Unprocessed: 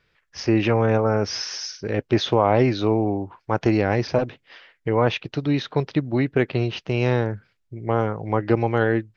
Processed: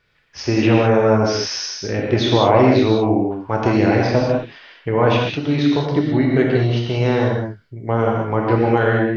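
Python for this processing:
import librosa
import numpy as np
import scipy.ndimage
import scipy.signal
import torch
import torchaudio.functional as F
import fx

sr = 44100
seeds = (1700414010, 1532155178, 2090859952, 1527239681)

y = fx.notch(x, sr, hz=2500.0, q=5.8, at=(5.7, 7.98))
y = fx.rev_gated(y, sr, seeds[0], gate_ms=230, shape='flat', drr_db=-2.0)
y = y * 10.0 ** (1.0 / 20.0)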